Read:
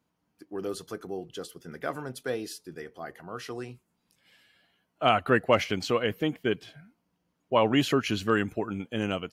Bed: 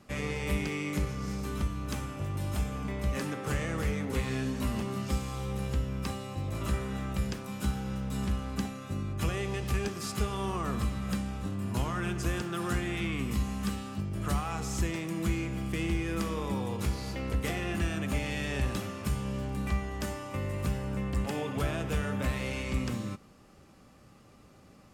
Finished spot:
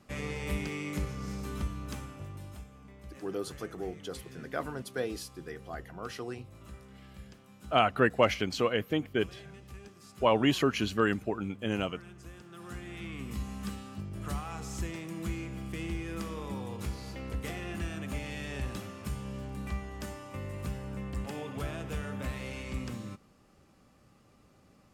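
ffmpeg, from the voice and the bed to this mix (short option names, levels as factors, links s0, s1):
-filter_complex "[0:a]adelay=2700,volume=0.794[s0];[1:a]volume=2.82,afade=t=out:st=1.7:d=0.97:silence=0.188365,afade=t=in:st=12.4:d=1.14:silence=0.251189[s1];[s0][s1]amix=inputs=2:normalize=0"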